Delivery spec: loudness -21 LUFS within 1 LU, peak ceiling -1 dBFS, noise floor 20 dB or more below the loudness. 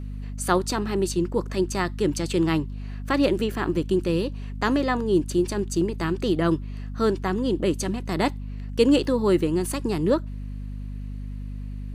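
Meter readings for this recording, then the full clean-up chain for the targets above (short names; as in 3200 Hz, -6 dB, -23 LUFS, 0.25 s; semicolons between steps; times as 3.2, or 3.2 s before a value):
hum 50 Hz; harmonics up to 250 Hz; hum level -30 dBFS; loudness -24.5 LUFS; peak -6.5 dBFS; loudness target -21.0 LUFS
-> de-hum 50 Hz, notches 5; gain +3.5 dB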